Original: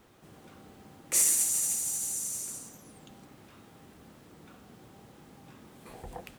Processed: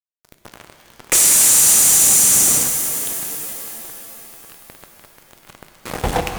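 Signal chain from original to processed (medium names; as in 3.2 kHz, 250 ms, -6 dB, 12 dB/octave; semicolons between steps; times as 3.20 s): fuzz box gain 42 dB, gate -45 dBFS; pitch-shifted reverb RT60 3.4 s, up +7 st, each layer -2 dB, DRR 6 dB; trim +2 dB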